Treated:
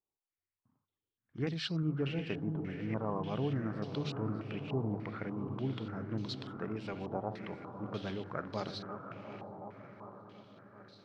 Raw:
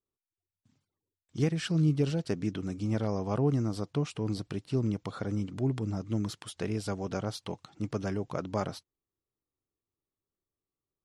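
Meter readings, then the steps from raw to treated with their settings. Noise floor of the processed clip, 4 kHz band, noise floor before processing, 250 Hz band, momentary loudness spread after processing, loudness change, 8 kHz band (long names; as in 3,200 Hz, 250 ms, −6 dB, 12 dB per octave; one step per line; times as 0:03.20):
below −85 dBFS, −1.0 dB, below −85 dBFS, −5.5 dB, 16 LU, −6.0 dB, below −10 dB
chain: feedback delay that plays each chunk backwards 365 ms, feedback 78%, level −12 dB
mains-hum notches 50/100/150 Hz
feedback delay with all-pass diffusion 711 ms, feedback 49%, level −10 dB
low-pass on a step sequencer 3.4 Hz 850–4,100 Hz
level −7 dB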